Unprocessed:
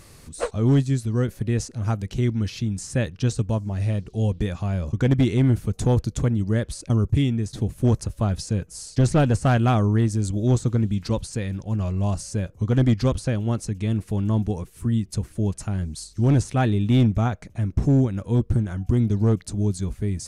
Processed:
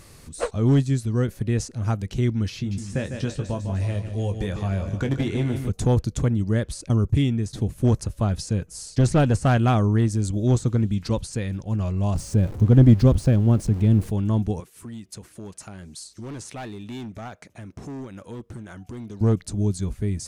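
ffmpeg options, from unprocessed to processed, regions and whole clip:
-filter_complex "[0:a]asettb=1/sr,asplit=3[a][b][c];[a]atrim=end=2.564[d];[b]atrim=start=2.56:end=5.69,asetpts=PTS-STARTPTS,afade=t=in:d=0.004:c=qsin,afade=t=out:st=3.126:d=0.004:c=qsin,aecho=1:1:150|300|450|600|750:0.316|0.158|0.0791|0.0395|0.0198,atrim=end_sample=138033,acrossover=split=350|3600[e][f][g];[e]acompressor=threshold=-24dB:ratio=4[h];[f]acompressor=threshold=-29dB:ratio=4[i];[g]acompressor=threshold=-46dB:ratio=4[j];[h][i][j]amix=inputs=3:normalize=0,asplit=2[k][l];[l]adelay=21,volume=-8dB[m];[k][m]amix=inputs=2:normalize=0,atrim=end_sample=138033[n];[c]atrim=start=5.686[o];[d][n]acrossfade=d=0.004:c1=hsin:c2=qsin[p];[p][o]acrossfade=d=0.004:c1=qsin:c2=hsin,asettb=1/sr,asplit=3[q][r][s];[q]atrim=end=12.154[t];[r]atrim=start=12.15:end=14.1,asetpts=PTS-STARTPTS,afade=t=in:d=0.004:c=qsin,afade=t=out:st=1.946:d=0.004:c=qsin,aeval=exprs='val(0)+0.5*0.02*sgn(val(0))':c=same,tiltshelf=f=680:g=6[u];[s]atrim=start=14.096[v];[t][u]acrossfade=d=0.004:c1=hsin:c2=qsin[w];[w][v]acrossfade=d=0.004:c1=qsin:c2=hsin,asettb=1/sr,asplit=3[x][y][z];[x]atrim=end=14.604[aa];[y]atrim=start=14.6:end=19.21,asetpts=PTS-STARTPTS,afade=t=in:d=0.004:c=qsin,afade=t=out:st=4.606:d=0.004:c=qsin,highpass=f=470:p=1,asoftclip=type=hard:threshold=-24dB,acompressor=threshold=-35dB:ratio=2.5:attack=3.2:release=140:knee=1:detection=peak[ab];[z]atrim=start=19.206[ac];[aa][ab]acrossfade=d=0.004:c1=hsin:c2=qsin[ad];[ad][ac]acrossfade=d=0.004:c1=qsin:c2=hsin"

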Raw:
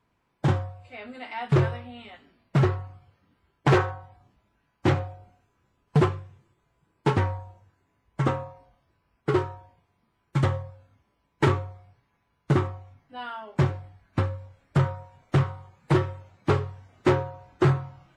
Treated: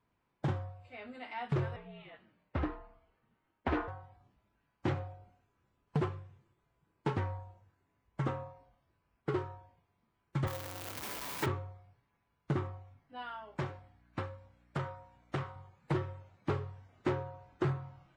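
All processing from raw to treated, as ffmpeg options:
-filter_complex "[0:a]asettb=1/sr,asplit=3[a][b][c];[a]atrim=end=1.764[d];[b]atrim=start=1.76:end=3.88,asetpts=PTS-STARTPTS,afade=t=in:d=0.004:c=qsin,afade=t=out:st=2.116:d=0.004:c=qsin,highpass=180,lowpass=3.3k,afreqshift=-63[e];[c]atrim=start=3.876[f];[d][e]acrossfade=d=0.004:c1=hsin:c2=qsin[g];[g][f]acrossfade=d=0.004:c1=qsin:c2=hsin,asettb=1/sr,asplit=3[h][i][j];[h]atrim=end=10.474[k];[i]atrim=start=10.47:end=11.46,asetpts=PTS-STARTPTS,afade=t=in:d=0.004:c=qsin,afade=t=out:st=0.986:d=0.004:c=qsin,aeval=exprs='val(0)+0.5*0.0473*sgn(val(0))':c=same,aemphasis=mode=production:type=bsi[l];[j]atrim=start=11.456[m];[k][l]acrossfade=d=0.004:c1=hsin:c2=qsin[n];[n][m]acrossfade=d=0.004:c1=qsin:c2=hsin,asettb=1/sr,asplit=3[o][p][q];[o]atrim=end=13.224[r];[p]atrim=start=13.22:end=15.56,asetpts=PTS-STARTPTS,afade=t=in:d=0.004:c=qsin,afade=t=out:st=2.336:d=0.004:c=qsin,aeval=exprs='val(0)+0.00282*(sin(2*PI*60*n/s)+sin(2*PI*2*60*n/s)/2+sin(2*PI*3*60*n/s)/3+sin(2*PI*4*60*n/s)/4+sin(2*PI*5*60*n/s)/5)':c=same,lowshelf=f=280:g=-10[s];[q]atrim=start=15.556[t];[r][s]acrossfade=d=0.004:c1=hsin:c2=qsin[u];[u][t]acrossfade=d=0.004:c1=qsin:c2=hsin,acompressor=threshold=-26dB:ratio=2,highshelf=f=6.8k:g=-8.5,volume=-6.5dB"

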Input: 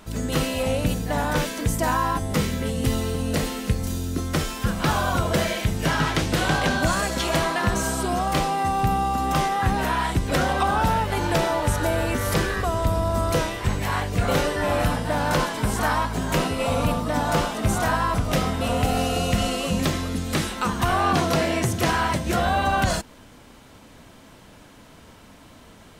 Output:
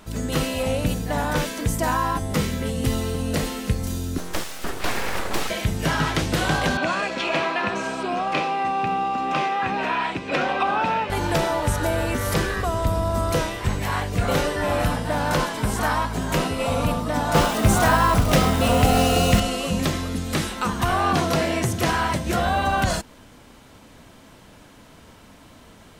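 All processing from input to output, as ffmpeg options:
-filter_complex "[0:a]asettb=1/sr,asplit=3[a][b][c];[a]atrim=end=4.184[d];[b]atrim=start=4.18:end=5.5,asetpts=PTS-STARTPTS,afade=t=in:d=0.004:c=qsin,afade=t=out:st=1.316:d=0.004:c=qsin,highpass=110,aeval=exprs='abs(val(0))':c=same[e];[c]atrim=start=5.496[f];[d][e]acrossfade=d=0.004:c1=hsin:c2=qsin[g];[g][f]acrossfade=d=0.004:c1=qsin:c2=hsin,asettb=1/sr,asplit=3[h][i][j];[h]atrim=end=6.774[k];[i]atrim=start=6.77:end=11.1,asetpts=PTS-STARTPTS,afade=t=in:d=0.004:c=qsin,afade=t=out:st=4.326:d=0.004:c=qsin,highpass=240,lowpass=3.9k,equalizer=f=2.5k:w=7.1:g=11.5[l];[j]atrim=start=11.096[m];[k][l]acrossfade=d=0.004:c1=hsin:c2=qsin[n];[n][m]acrossfade=d=0.004:c1=qsin:c2=hsin,asettb=1/sr,asplit=3[o][p][q];[o]atrim=end=17.354[r];[p]atrim=start=17.35:end=19.4,asetpts=PTS-STARTPTS,afade=t=in:d=0.004:c=qsin,afade=t=out:st=2.046:d=0.004:c=qsin,acrusher=bits=7:dc=4:mix=0:aa=0.000001,acontrast=28[s];[q]atrim=start=19.396[t];[r][s]acrossfade=d=0.004:c1=hsin:c2=qsin[u];[u][t]acrossfade=d=0.004:c1=qsin:c2=hsin"

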